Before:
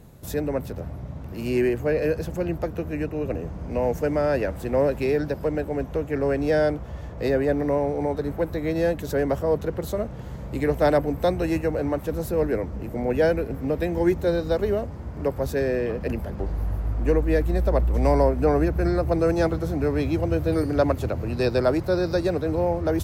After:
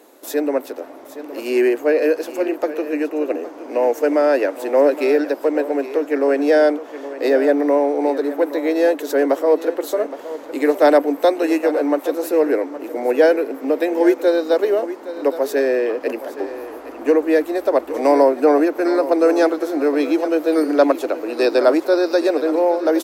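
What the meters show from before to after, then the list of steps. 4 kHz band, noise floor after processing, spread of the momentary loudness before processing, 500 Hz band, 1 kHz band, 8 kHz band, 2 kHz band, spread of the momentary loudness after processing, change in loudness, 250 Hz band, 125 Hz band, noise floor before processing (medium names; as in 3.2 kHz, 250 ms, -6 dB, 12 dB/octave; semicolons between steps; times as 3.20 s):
+6.5 dB, -37 dBFS, 8 LU, +7.5 dB, +7.5 dB, no reading, +7.0 dB, 10 LU, +6.5 dB, +6.0 dB, under -30 dB, -36 dBFS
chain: elliptic high-pass 280 Hz, stop band 40 dB; delay 817 ms -14 dB; trim +7.5 dB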